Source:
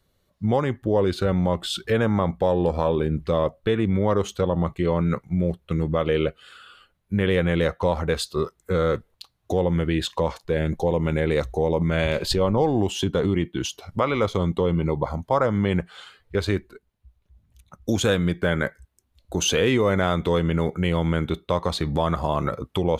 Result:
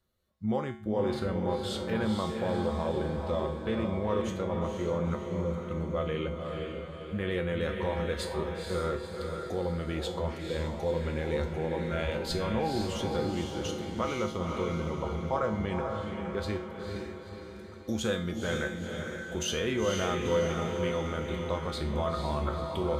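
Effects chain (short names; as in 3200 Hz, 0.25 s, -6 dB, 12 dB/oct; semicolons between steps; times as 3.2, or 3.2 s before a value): bell 1300 Hz +3 dB 0.25 oct; resonator 73 Hz, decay 0.47 s, harmonics odd, mix 80%; diffused feedback echo 0.486 s, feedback 52%, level -4 dB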